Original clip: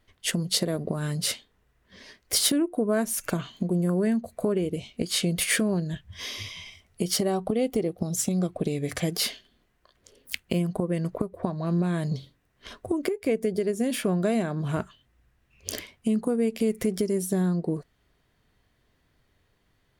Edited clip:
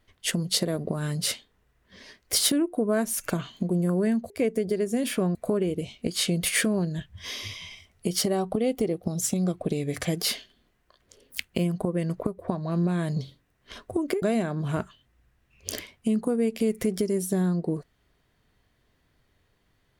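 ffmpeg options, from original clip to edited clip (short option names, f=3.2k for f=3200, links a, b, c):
-filter_complex "[0:a]asplit=4[a][b][c][d];[a]atrim=end=4.302[e];[b]atrim=start=13.168:end=14.222[f];[c]atrim=start=4.298:end=13.172[g];[d]atrim=start=14.218[h];[e][f]acrossfade=d=0.004:c1=hsin:c2=hsin[i];[i][g]acrossfade=d=0.004:c1=hsin:c2=hsin[j];[j][h]acrossfade=d=0.004:c1=hsin:c2=hsin"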